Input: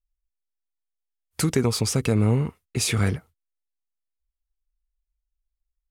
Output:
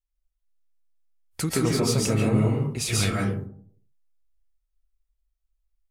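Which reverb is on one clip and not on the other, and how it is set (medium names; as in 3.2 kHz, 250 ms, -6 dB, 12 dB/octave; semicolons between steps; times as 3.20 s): algorithmic reverb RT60 0.59 s, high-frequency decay 0.35×, pre-delay 100 ms, DRR -4 dB; trim -4.5 dB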